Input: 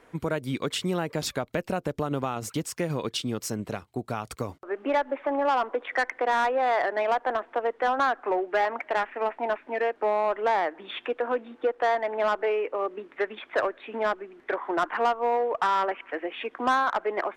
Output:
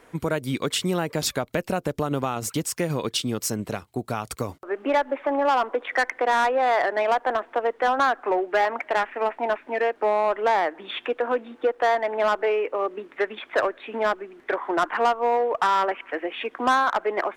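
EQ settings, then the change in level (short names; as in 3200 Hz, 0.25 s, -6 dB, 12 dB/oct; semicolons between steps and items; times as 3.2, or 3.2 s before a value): high shelf 6200 Hz +6.5 dB; +3.0 dB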